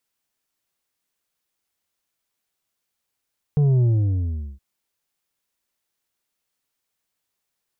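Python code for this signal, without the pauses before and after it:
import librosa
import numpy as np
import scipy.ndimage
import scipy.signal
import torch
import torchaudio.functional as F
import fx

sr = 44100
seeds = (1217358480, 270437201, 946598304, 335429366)

y = fx.sub_drop(sr, level_db=-15, start_hz=150.0, length_s=1.02, drive_db=6, fade_s=0.77, end_hz=65.0)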